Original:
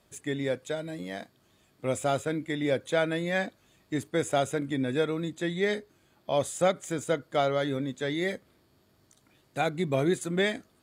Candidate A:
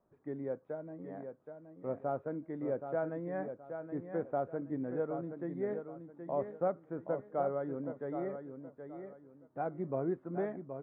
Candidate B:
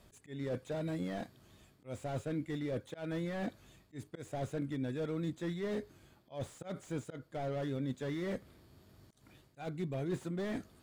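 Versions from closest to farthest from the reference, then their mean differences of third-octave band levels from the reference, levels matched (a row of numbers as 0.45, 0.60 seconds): B, A; 5.0, 10.5 decibels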